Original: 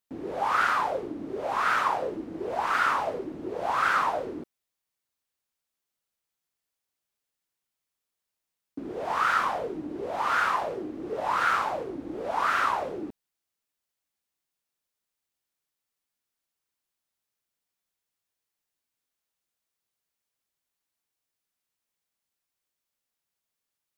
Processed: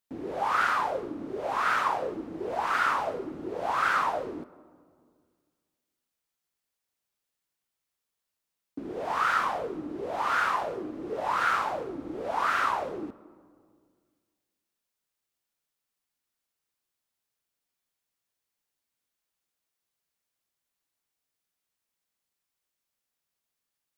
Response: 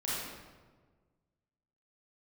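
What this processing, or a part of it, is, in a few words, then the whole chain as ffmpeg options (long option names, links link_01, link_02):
ducked reverb: -filter_complex "[0:a]asplit=3[link_01][link_02][link_03];[1:a]atrim=start_sample=2205[link_04];[link_02][link_04]afir=irnorm=-1:irlink=0[link_05];[link_03]apad=whole_len=1057511[link_06];[link_05][link_06]sidechaincompress=threshold=-35dB:ratio=8:attack=16:release=1080,volume=-12dB[link_07];[link_01][link_07]amix=inputs=2:normalize=0,volume=-1.5dB"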